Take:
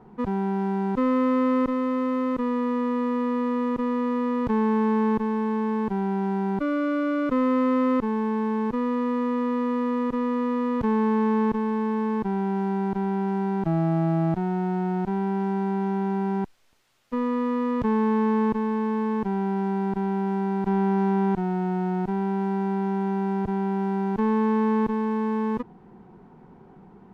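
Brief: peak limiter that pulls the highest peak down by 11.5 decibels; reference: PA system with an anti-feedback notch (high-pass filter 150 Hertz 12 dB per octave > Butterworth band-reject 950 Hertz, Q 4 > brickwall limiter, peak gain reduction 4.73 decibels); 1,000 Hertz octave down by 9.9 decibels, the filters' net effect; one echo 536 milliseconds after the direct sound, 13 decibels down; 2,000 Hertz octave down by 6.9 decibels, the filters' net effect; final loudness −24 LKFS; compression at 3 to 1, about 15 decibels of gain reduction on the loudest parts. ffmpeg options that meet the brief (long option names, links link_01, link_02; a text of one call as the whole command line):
ffmpeg -i in.wav -af "equalizer=frequency=1000:width_type=o:gain=-7.5,equalizer=frequency=2000:width_type=o:gain=-6,acompressor=threshold=-42dB:ratio=3,alimiter=level_in=17dB:limit=-24dB:level=0:latency=1,volume=-17dB,highpass=150,asuperstop=centerf=950:order=8:qfactor=4,aecho=1:1:536:0.224,volume=26dB,alimiter=limit=-17.5dB:level=0:latency=1" out.wav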